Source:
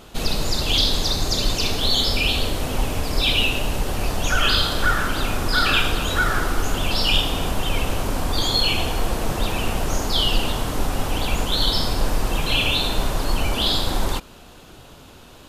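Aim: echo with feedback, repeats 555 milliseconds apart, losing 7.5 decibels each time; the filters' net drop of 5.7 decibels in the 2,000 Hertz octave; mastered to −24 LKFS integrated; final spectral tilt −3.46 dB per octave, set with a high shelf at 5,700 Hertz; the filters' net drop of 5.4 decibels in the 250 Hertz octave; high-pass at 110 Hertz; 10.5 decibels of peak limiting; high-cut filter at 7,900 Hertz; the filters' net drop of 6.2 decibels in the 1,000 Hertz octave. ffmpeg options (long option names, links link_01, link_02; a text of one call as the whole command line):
ffmpeg -i in.wav -af "highpass=110,lowpass=7900,equalizer=frequency=250:width_type=o:gain=-6.5,equalizer=frequency=1000:width_type=o:gain=-6.5,equalizer=frequency=2000:width_type=o:gain=-5,highshelf=frequency=5700:gain=-6.5,alimiter=limit=-20dB:level=0:latency=1,aecho=1:1:555|1110|1665|2220|2775:0.422|0.177|0.0744|0.0312|0.0131,volume=4.5dB" out.wav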